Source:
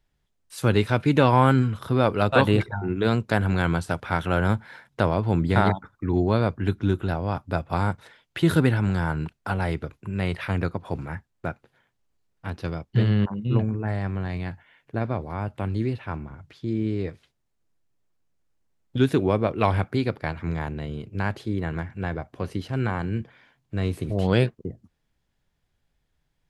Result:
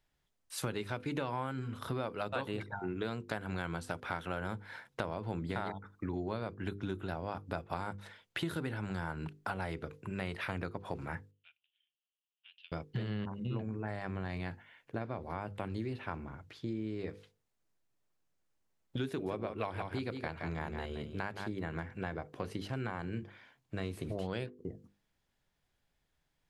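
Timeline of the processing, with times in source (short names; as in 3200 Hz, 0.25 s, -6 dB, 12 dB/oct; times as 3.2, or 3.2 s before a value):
11.31–12.72 Butterworth band-pass 3000 Hz, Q 4.4
19.09–21.52 echo 0.171 s -8 dB
whole clip: low shelf 190 Hz -6.5 dB; notches 50/100/150/200/250/300/350/400/450/500 Hz; compressor 6:1, threshold -32 dBFS; gain -2 dB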